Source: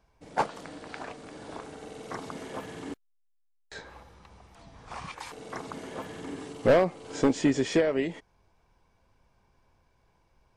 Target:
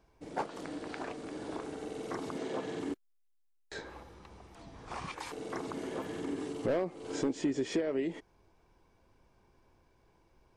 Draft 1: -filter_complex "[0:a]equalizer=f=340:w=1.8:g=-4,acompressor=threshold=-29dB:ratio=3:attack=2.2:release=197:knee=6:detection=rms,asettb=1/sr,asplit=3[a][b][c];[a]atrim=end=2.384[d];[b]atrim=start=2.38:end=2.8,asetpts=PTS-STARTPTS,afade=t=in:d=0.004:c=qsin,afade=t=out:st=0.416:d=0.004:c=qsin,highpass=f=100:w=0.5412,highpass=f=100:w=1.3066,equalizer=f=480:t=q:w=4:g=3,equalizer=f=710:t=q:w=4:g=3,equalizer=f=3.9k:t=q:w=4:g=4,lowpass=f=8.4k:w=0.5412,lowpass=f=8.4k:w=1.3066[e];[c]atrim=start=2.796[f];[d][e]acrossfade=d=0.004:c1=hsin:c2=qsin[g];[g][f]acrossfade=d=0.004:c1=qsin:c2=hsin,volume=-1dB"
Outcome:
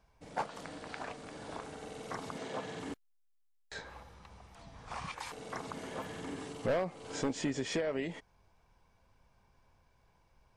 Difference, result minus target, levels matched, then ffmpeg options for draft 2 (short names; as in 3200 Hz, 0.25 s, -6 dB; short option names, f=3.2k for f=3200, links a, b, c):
250 Hz band -2.5 dB
-filter_complex "[0:a]equalizer=f=340:w=1.8:g=8,acompressor=threshold=-29dB:ratio=3:attack=2.2:release=197:knee=6:detection=rms,asettb=1/sr,asplit=3[a][b][c];[a]atrim=end=2.384[d];[b]atrim=start=2.38:end=2.8,asetpts=PTS-STARTPTS,afade=t=in:d=0.004:c=qsin,afade=t=out:st=0.416:d=0.004:c=qsin,highpass=f=100:w=0.5412,highpass=f=100:w=1.3066,equalizer=f=480:t=q:w=4:g=3,equalizer=f=710:t=q:w=4:g=3,equalizer=f=3.9k:t=q:w=4:g=4,lowpass=f=8.4k:w=0.5412,lowpass=f=8.4k:w=1.3066[e];[c]atrim=start=2.796[f];[d][e]acrossfade=d=0.004:c1=hsin:c2=qsin[g];[g][f]acrossfade=d=0.004:c1=qsin:c2=hsin,volume=-1dB"